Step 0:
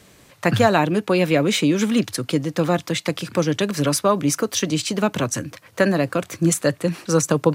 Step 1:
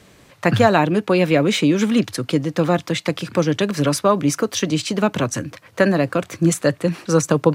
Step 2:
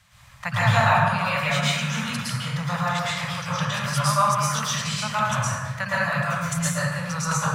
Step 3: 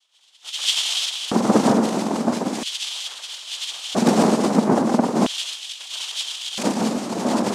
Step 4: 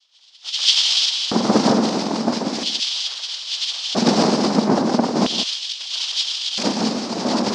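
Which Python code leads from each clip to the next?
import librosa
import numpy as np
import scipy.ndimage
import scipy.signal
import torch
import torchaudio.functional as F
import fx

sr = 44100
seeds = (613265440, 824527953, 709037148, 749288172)

y1 = fx.high_shelf(x, sr, hz=6000.0, db=-7.0)
y1 = F.gain(torch.from_numpy(y1), 2.0).numpy()
y2 = scipy.signal.sosfilt(scipy.signal.cheby1(2, 1.0, [120.0, 990.0], 'bandstop', fs=sr, output='sos'), y1)
y2 = fx.rev_plate(y2, sr, seeds[0], rt60_s=1.5, hf_ratio=0.45, predelay_ms=100, drr_db=-9.0)
y2 = F.gain(torch.from_numpy(y2), -7.0).numpy()
y3 = fx.octave_mirror(y2, sr, pivot_hz=750.0)
y3 = fx.noise_vocoder(y3, sr, seeds[1], bands=2)
y3 = fx.filter_lfo_highpass(y3, sr, shape='square', hz=0.38, low_hz=220.0, high_hz=3200.0, q=5.1)
y4 = fx.lowpass_res(y3, sr, hz=5000.0, q=3.2)
y4 = y4 + 10.0 ** (-12.0 / 20.0) * np.pad(y4, (int(168 * sr / 1000.0), 0))[:len(y4)]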